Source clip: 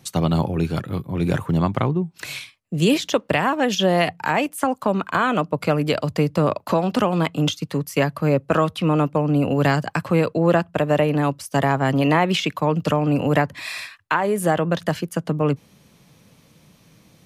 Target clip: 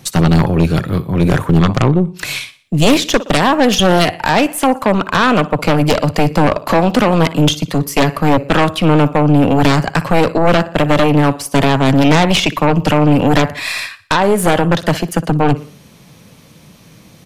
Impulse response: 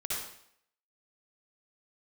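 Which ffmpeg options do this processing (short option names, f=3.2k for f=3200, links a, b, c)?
-af "aecho=1:1:60|120|180|240:0.126|0.0567|0.0255|0.0115,aeval=exprs='0.531*(cos(1*acos(clip(val(0)/0.531,-1,1)))-cos(1*PI/2))+0.266*(cos(4*acos(clip(val(0)/0.531,-1,1)))-cos(4*PI/2))+0.237*(cos(5*acos(clip(val(0)/0.531,-1,1)))-cos(5*PI/2))':c=same"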